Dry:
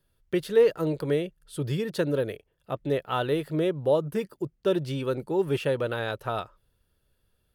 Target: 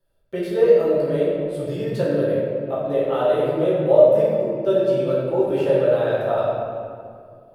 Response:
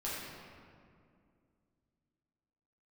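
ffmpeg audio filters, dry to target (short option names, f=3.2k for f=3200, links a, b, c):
-filter_complex "[0:a]equalizer=f=610:t=o:w=0.67:g=13.5[a];[1:a]atrim=start_sample=2205[b];[a][b]afir=irnorm=-1:irlink=0,volume=-3dB"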